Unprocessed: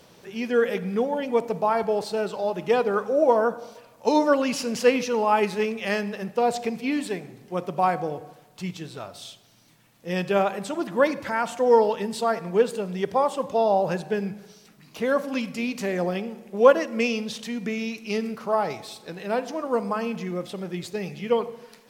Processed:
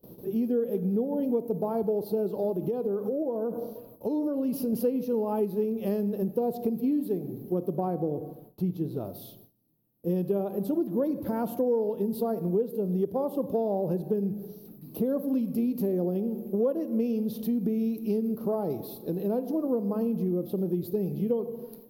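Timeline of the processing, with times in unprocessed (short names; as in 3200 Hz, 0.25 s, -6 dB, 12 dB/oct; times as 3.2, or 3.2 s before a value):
2.56–4.73 compressor 5:1, threshold -30 dBFS
7.76–9.05 high shelf 4700 Hz -7 dB
whole clip: gate with hold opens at -43 dBFS; EQ curve 120 Hz 0 dB, 350 Hz +4 dB, 2000 Hz -29 dB, 4300 Hz -18 dB, 8000 Hz -26 dB, 12000 Hz +7 dB; compressor 5:1, threshold -32 dBFS; gain +7 dB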